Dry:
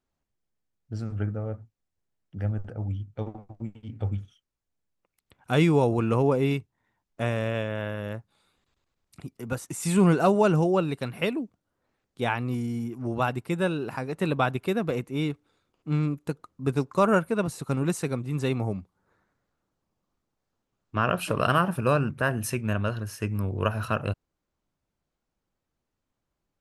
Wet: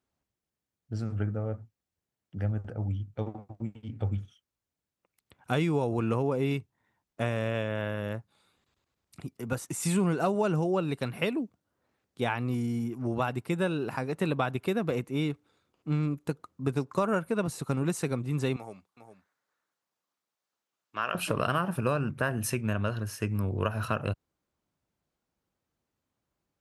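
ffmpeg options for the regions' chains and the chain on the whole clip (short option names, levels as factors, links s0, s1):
-filter_complex "[0:a]asettb=1/sr,asplit=3[s0][s1][s2];[s0]atrim=end=18.564[s3];[s1]atrim=start=18.56:end=21.15,asetpts=PTS-STARTPTS,afade=t=in:d=0.004:c=qsin,afade=t=out:st=2.586:d=0.004:c=qsin,highpass=f=1500:p=1,aecho=1:1:406:0.316,atrim=end_sample=114219[s4];[s2]atrim=start=21.146[s5];[s3][s4]acrossfade=d=0.004:c1=hsin:c2=qsin[s6];[s6][s5]acrossfade=d=0.004:c1=qsin:c2=hsin,highpass=58,acompressor=threshold=0.0631:ratio=4"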